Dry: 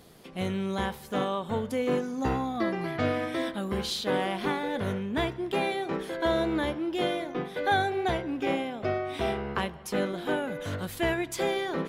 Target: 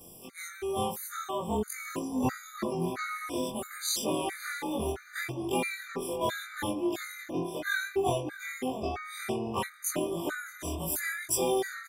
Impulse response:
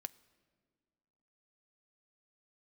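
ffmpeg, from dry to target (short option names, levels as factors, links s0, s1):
-filter_complex "[0:a]afftfilt=real='re':imag='-im':win_size=2048:overlap=0.75,aexciter=amount=5.7:drive=2.1:freq=5600,asplit=2[s0][s1];[s1]adelay=619,lowpass=f=2500:p=1,volume=0.2,asplit=2[s2][s3];[s3]adelay=619,lowpass=f=2500:p=1,volume=0.45,asplit=2[s4][s5];[s5]adelay=619,lowpass=f=2500:p=1,volume=0.45,asplit=2[s6][s7];[s7]adelay=619,lowpass=f=2500:p=1,volume=0.45[s8];[s0][s2][s4][s6][s8]amix=inputs=5:normalize=0,afftfilt=real='re*gt(sin(2*PI*1.5*pts/sr)*(1-2*mod(floor(b*sr/1024/1200),2)),0)':imag='im*gt(sin(2*PI*1.5*pts/sr)*(1-2*mod(floor(b*sr/1024/1200),2)),0)':win_size=1024:overlap=0.75,volume=1.68"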